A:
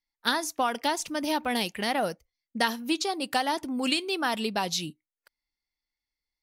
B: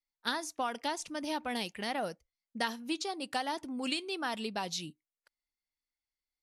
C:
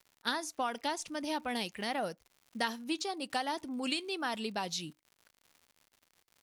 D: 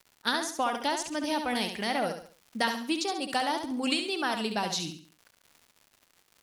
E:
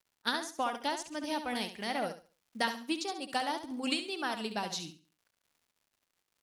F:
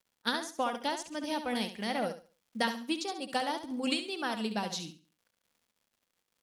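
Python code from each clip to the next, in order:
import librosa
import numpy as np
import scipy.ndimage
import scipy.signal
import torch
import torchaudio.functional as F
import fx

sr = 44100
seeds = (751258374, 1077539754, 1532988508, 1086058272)

y1 = scipy.signal.sosfilt(scipy.signal.butter(4, 11000.0, 'lowpass', fs=sr, output='sos'), x)
y1 = F.gain(torch.from_numpy(y1), -7.5).numpy()
y2 = fx.dmg_crackle(y1, sr, seeds[0], per_s=140.0, level_db=-49.0)
y3 = fx.echo_feedback(y2, sr, ms=69, feedback_pct=36, wet_db=-7)
y3 = F.gain(torch.from_numpy(y3), 5.0).numpy()
y4 = fx.upward_expand(y3, sr, threshold_db=-49.0, expansion=1.5)
y4 = F.gain(torch.from_numpy(y4), -3.0).numpy()
y5 = fx.small_body(y4, sr, hz=(210.0, 500.0, 3300.0), ring_ms=45, db=6)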